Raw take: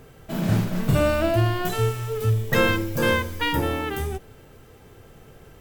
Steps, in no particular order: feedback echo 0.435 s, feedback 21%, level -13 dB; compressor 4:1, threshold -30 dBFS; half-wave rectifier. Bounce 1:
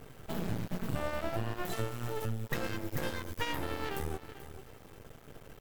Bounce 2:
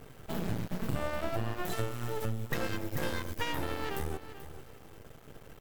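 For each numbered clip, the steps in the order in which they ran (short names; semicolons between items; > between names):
compressor > feedback echo > half-wave rectifier; half-wave rectifier > compressor > feedback echo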